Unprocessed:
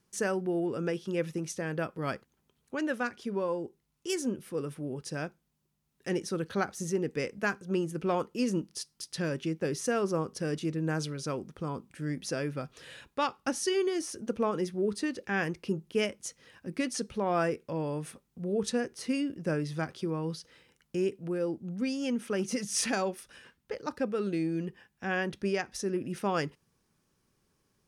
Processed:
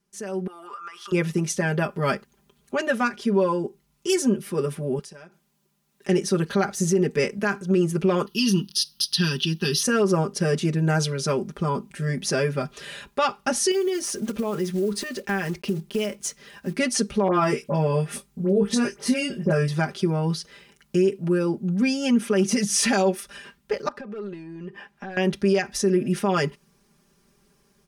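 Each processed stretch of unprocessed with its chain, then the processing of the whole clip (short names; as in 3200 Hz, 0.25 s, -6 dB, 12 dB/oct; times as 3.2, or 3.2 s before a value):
0.47–1.12 resonant high-pass 1200 Hz, resonance Q 11 + compressor 10:1, threshold -46 dBFS
4.99–6.09 HPF 240 Hz 6 dB/oct + compressor 20:1, threshold -50 dBFS
8.26–9.83 resonant high shelf 2000 Hz +11 dB, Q 1.5 + fixed phaser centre 2200 Hz, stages 6
13.71–16.74 block floating point 5-bit + compressor 5:1, threshold -34 dBFS
17.28–19.68 doubler 20 ms -6.5 dB + dispersion highs, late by 67 ms, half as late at 2000 Hz
23.88–25.17 overdrive pedal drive 15 dB, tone 1100 Hz, clips at -18.5 dBFS + compressor 8:1, threshold -44 dBFS
whole clip: comb 5 ms, depth 100%; limiter -20 dBFS; AGC gain up to 14 dB; gain -6 dB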